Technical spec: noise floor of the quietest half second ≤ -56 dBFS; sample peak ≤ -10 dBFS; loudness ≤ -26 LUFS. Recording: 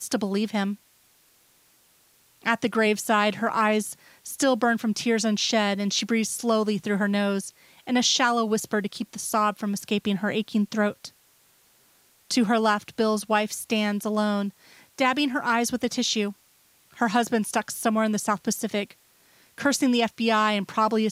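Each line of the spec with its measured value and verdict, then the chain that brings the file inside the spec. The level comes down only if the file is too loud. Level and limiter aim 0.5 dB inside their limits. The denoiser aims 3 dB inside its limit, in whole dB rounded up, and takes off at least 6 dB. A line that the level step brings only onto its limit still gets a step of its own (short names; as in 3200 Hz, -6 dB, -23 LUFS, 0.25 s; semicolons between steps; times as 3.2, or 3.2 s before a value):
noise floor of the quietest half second -61 dBFS: OK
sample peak -8.0 dBFS: fail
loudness -24.5 LUFS: fail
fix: gain -2 dB; limiter -10.5 dBFS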